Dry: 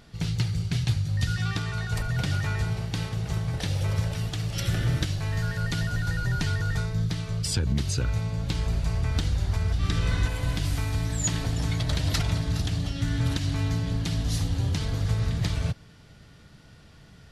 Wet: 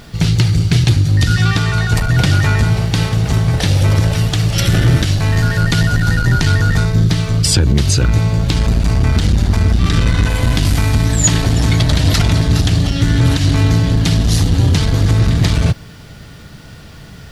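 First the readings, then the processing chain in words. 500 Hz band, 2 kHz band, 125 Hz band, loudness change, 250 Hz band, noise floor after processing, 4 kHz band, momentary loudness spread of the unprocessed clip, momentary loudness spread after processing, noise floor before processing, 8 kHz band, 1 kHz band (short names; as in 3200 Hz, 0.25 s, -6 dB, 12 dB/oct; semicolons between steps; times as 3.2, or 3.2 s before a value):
+14.5 dB, +14.0 dB, +14.0 dB, +14.0 dB, +15.0 dB, -36 dBFS, +14.0 dB, 3 LU, 3 LU, -52 dBFS, +14.0 dB, +14.0 dB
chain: requantised 12-bit, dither triangular; maximiser +15.5 dB; core saturation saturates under 120 Hz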